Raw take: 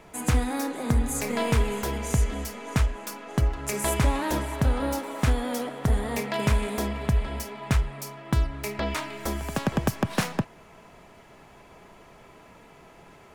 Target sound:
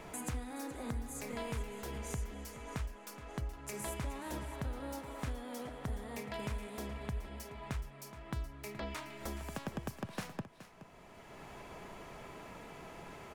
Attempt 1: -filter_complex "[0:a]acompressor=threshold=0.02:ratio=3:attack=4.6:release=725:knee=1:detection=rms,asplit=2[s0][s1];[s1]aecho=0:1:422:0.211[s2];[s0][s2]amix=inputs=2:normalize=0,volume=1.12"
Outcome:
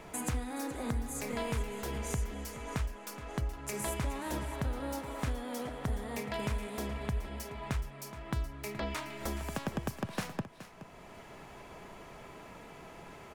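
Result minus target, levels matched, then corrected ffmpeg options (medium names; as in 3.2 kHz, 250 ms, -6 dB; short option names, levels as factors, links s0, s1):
compression: peak gain reduction -5 dB
-filter_complex "[0:a]acompressor=threshold=0.00841:ratio=3:attack=4.6:release=725:knee=1:detection=rms,asplit=2[s0][s1];[s1]aecho=0:1:422:0.211[s2];[s0][s2]amix=inputs=2:normalize=0,volume=1.12"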